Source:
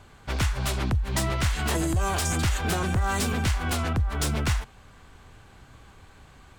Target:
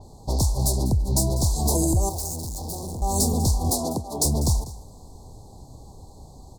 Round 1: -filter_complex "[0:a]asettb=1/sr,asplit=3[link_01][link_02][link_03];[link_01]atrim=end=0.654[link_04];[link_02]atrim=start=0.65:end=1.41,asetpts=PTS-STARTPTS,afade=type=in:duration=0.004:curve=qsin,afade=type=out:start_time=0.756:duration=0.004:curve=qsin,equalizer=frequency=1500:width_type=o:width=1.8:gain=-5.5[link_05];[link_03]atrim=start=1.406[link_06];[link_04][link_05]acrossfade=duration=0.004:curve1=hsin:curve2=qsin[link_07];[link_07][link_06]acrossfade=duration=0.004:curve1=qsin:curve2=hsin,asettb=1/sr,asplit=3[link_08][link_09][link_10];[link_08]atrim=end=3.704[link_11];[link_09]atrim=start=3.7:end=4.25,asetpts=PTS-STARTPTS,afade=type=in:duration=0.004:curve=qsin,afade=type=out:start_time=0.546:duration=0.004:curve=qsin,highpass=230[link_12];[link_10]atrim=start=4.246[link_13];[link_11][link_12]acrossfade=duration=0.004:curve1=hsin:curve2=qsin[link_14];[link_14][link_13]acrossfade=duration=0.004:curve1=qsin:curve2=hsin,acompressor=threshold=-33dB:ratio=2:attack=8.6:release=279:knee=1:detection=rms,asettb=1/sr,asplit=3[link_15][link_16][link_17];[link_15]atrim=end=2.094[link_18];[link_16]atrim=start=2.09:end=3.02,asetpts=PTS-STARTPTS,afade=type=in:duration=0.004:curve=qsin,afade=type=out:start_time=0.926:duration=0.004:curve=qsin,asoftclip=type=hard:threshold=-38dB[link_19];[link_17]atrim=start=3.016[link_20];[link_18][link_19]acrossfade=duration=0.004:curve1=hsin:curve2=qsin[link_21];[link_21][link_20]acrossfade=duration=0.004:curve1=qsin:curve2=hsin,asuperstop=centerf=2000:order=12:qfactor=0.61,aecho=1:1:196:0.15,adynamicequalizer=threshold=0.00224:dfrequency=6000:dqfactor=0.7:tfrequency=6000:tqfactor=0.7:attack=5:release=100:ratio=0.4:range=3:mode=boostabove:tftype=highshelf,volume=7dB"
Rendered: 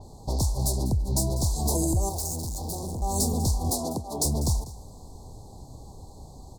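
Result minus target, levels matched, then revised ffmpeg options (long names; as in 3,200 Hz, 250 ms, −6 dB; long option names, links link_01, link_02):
downward compressor: peak gain reduction +3.5 dB
-filter_complex "[0:a]asettb=1/sr,asplit=3[link_01][link_02][link_03];[link_01]atrim=end=0.654[link_04];[link_02]atrim=start=0.65:end=1.41,asetpts=PTS-STARTPTS,afade=type=in:duration=0.004:curve=qsin,afade=type=out:start_time=0.756:duration=0.004:curve=qsin,equalizer=frequency=1500:width_type=o:width=1.8:gain=-5.5[link_05];[link_03]atrim=start=1.406[link_06];[link_04][link_05]acrossfade=duration=0.004:curve1=hsin:curve2=qsin[link_07];[link_07][link_06]acrossfade=duration=0.004:curve1=qsin:curve2=hsin,asettb=1/sr,asplit=3[link_08][link_09][link_10];[link_08]atrim=end=3.704[link_11];[link_09]atrim=start=3.7:end=4.25,asetpts=PTS-STARTPTS,afade=type=in:duration=0.004:curve=qsin,afade=type=out:start_time=0.546:duration=0.004:curve=qsin,highpass=230[link_12];[link_10]atrim=start=4.246[link_13];[link_11][link_12]acrossfade=duration=0.004:curve1=hsin:curve2=qsin[link_14];[link_14][link_13]acrossfade=duration=0.004:curve1=qsin:curve2=hsin,acompressor=threshold=-26dB:ratio=2:attack=8.6:release=279:knee=1:detection=rms,asettb=1/sr,asplit=3[link_15][link_16][link_17];[link_15]atrim=end=2.094[link_18];[link_16]atrim=start=2.09:end=3.02,asetpts=PTS-STARTPTS,afade=type=in:duration=0.004:curve=qsin,afade=type=out:start_time=0.926:duration=0.004:curve=qsin,asoftclip=type=hard:threshold=-38dB[link_19];[link_17]atrim=start=3.016[link_20];[link_18][link_19]acrossfade=duration=0.004:curve1=hsin:curve2=qsin[link_21];[link_21][link_20]acrossfade=duration=0.004:curve1=qsin:curve2=hsin,asuperstop=centerf=2000:order=12:qfactor=0.61,aecho=1:1:196:0.15,adynamicequalizer=threshold=0.00224:dfrequency=6000:dqfactor=0.7:tfrequency=6000:tqfactor=0.7:attack=5:release=100:ratio=0.4:range=3:mode=boostabove:tftype=highshelf,volume=7dB"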